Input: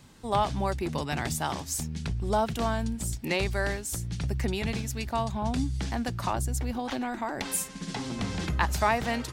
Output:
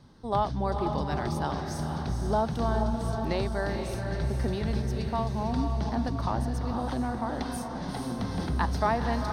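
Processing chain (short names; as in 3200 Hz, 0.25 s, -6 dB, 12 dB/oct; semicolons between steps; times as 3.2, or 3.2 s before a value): polynomial smoothing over 15 samples; bell 2500 Hz -13 dB 0.91 oct; diffused feedback echo 0.471 s, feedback 53%, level -5 dB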